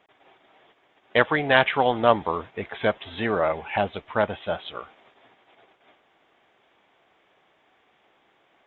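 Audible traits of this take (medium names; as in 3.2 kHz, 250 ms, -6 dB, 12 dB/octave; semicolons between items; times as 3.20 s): noise floor -64 dBFS; spectral tilt -2.5 dB/octave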